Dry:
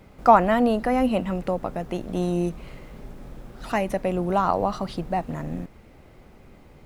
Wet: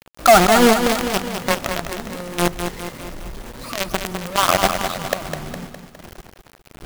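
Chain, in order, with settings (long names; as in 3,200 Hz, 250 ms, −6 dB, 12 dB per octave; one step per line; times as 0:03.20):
rippled gain that drifts along the octave scale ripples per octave 0.98, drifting +1.4 Hz, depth 20 dB
log-companded quantiser 2 bits
feedback echo at a low word length 205 ms, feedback 55%, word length 7 bits, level −7 dB
level −6 dB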